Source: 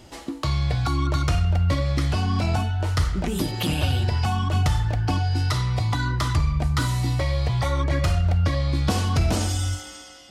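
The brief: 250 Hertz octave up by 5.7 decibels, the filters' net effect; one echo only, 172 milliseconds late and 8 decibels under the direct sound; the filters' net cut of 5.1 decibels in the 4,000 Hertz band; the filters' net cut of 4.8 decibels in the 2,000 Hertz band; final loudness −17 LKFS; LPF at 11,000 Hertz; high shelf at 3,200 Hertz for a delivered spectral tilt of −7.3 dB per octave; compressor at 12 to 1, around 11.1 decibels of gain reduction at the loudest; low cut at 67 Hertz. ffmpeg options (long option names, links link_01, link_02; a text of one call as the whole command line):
ffmpeg -i in.wav -af "highpass=67,lowpass=11000,equalizer=frequency=250:width_type=o:gain=8,equalizer=frequency=2000:width_type=o:gain=-6,highshelf=frequency=3200:gain=3.5,equalizer=frequency=4000:width_type=o:gain=-7.5,acompressor=threshold=-26dB:ratio=12,aecho=1:1:172:0.398,volume=12.5dB" out.wav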